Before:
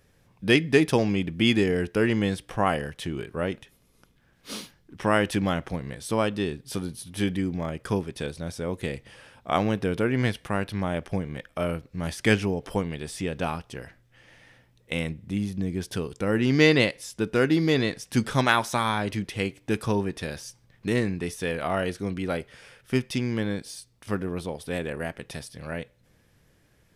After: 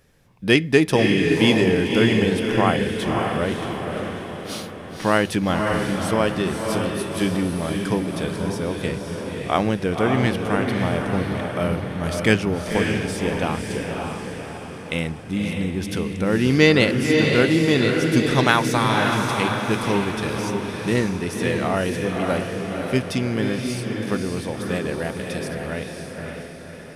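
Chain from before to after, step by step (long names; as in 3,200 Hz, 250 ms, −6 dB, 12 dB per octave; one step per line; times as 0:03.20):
mains-hum notches 50/100 Hz
feedback delay with all-pass diffusion 561 ms, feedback 52%, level −3 dB
level +3.5 dB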